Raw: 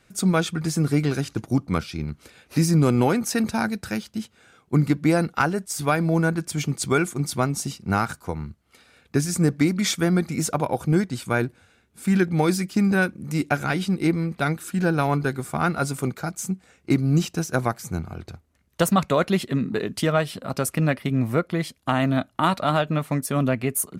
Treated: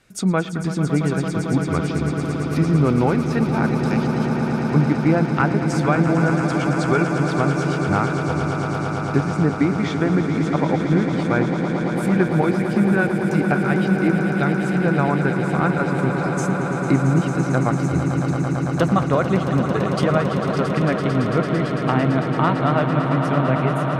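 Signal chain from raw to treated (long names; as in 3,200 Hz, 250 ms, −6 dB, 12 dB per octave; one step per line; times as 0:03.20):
treble cut that deepens with the level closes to 2,200 Hz, closed at −20 dBFS
echo that builds up and dies away 112 ms, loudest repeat 8, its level −10.5 dB
level +1 dB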